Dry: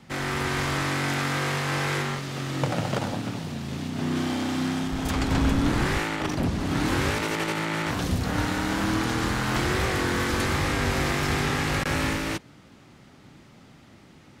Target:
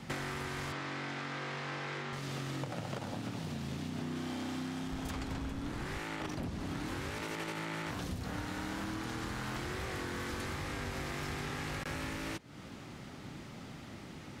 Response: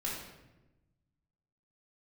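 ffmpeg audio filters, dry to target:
-filter_complex "[0:a]acompressor=threshold=-39dB:ratio=16,asettb=1/sr,asplit=3[a][b][c];[a]atrim=end=0.724[d];[b]atrim=start=0.72:end=2.13,asetpts=PTS-STARTPTS,afade=t=in:d=0.004:c=qsin,afade=t=out:st=1.406:d=0.004:c=qsin,highpass=150,lowpass=5k[e];[c]atrim=start=2.126[f];[d][e]acrossfade=d=0.004:c1=hsin:c2=qsin[g];[g][f]acrossfade=d=0.004:c1=qsin:c2=hsin,volume=3.5dB"

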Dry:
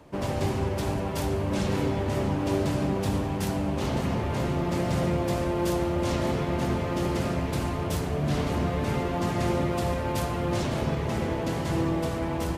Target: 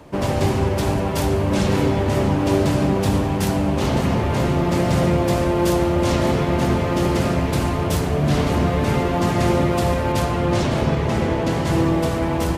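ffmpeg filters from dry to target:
-filter_complex "[0:a]asettb=1/sr,asplit=3[a][b][c];[a]atrim=end=10.124[d];[b]atrim=start=10.12:end=11.67,asetpts=PTS-STARTPTS,afade=t=in:d=0.004:c=qsin,afade=t=out:st=1.546:d=0.004:c=qsin,highshelf=f=11k:g=-9.5[e];[c]atrim=start=11.666[f];[d][e]acrossfade=d=0.004:c1=hsin:c2=qsin[g];[g][f]acrossfade=d=0.004:c1=qsin:c2=hsin,volume=8dB"

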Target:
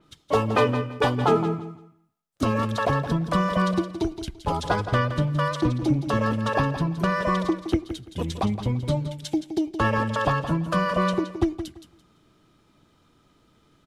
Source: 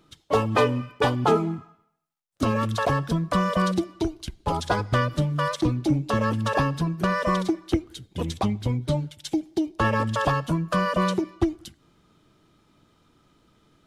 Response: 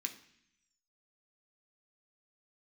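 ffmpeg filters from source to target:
-af "aecho=1:1:169|338|507:0.299|0.0627|0.0132,adynamicequalizer=threshold=0.00501:dfrequency=4600:dqfactor=0.7:tfrequency=4600:tqfactor=0.7:attack=5:release=100:ratio=0.375:range=4:mode=cutabove:tftype=highshelf"

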